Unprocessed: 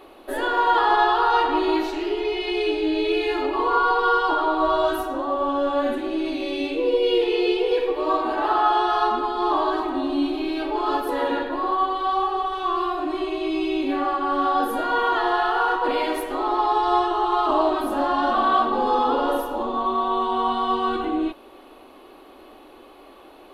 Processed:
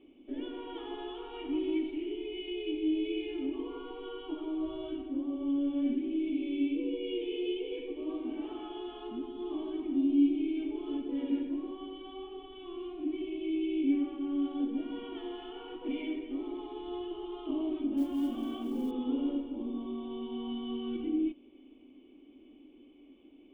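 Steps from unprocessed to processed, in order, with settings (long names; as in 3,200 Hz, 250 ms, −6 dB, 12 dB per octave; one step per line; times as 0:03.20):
formant resonators in series i
0:17.97–0:18.91: noise that follows the level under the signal 32 dB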